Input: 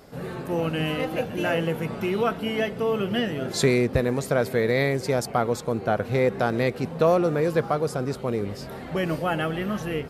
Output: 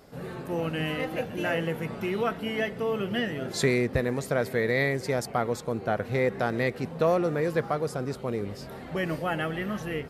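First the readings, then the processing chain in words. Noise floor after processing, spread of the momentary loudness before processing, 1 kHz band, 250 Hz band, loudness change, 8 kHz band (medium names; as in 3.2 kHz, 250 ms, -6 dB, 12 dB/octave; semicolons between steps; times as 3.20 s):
-41 dBFS, 7 LU, -4.0 dB, -4.0 dB, -3.5 dB, -4.0 dB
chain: dynamic bell 1.9 kHz, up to +6 dB, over -46 dBFS, Q 4.5; trim -4 dB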